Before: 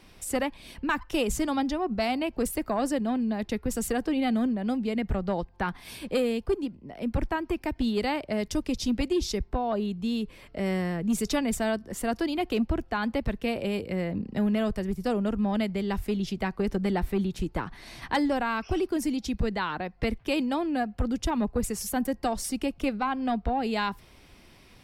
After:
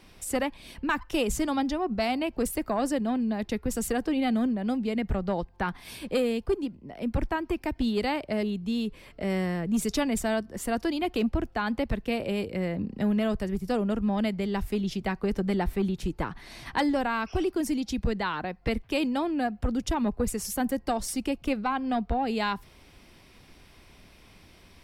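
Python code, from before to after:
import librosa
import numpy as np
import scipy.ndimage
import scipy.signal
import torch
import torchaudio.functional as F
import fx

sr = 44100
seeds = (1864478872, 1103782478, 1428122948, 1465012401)

y = fx.edit(x, sr, fx.cut(start_s=8.43, length_s=1.36), tone=tone)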